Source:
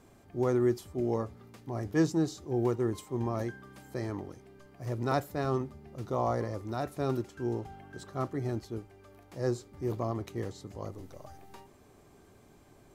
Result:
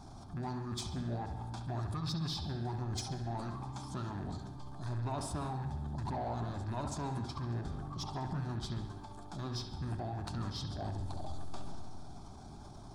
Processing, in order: rattling part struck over -36 dBFS, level -34 dBFS; high shelf 11000 Hz -10.5 dB; fixed phaser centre 1200 Hz, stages 4; transient shaper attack -5 dB, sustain +5 dB; in parallel at +1 dB: compressor, threshold -50 dBFS, peak gain reduction 20.5 dB; on the sum: limiter -32 dBFS, peak gain reduction 11 dB; harmonic-percussive split harmonic -9 dB; formant shift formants -6 st; soft clip -38.5 dBFS, distortion -21 dB; analogue delay 68 ms, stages 2048, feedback 58%, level -8 dB; reverb RT60 1.2 s, pre-delay 95 ms, DRR 16 dB; gain +8.5 dB

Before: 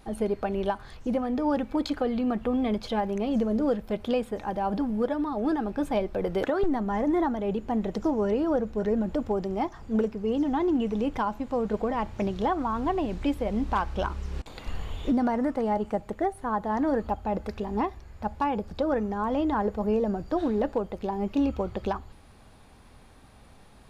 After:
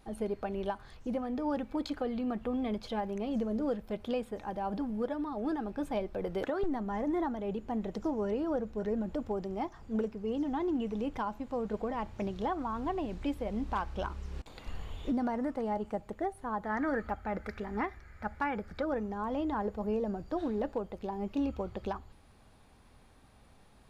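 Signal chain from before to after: spectral gain 16.64–18.85, 1200–2400 Hz +11 dB; gain -7 dB

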